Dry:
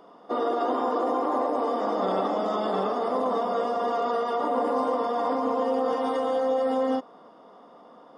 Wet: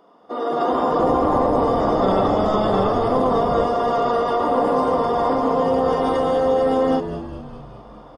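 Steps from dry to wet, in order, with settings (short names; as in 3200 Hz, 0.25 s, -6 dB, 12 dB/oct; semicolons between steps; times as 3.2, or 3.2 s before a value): frequency-shifting echo 0.204 s, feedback 60%, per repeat -95 Hz, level -11 dB; AGC gain up to 9 dB; 0.99–3.66 low shelf 160 Hz +9.5 dB; gain -2.5 dB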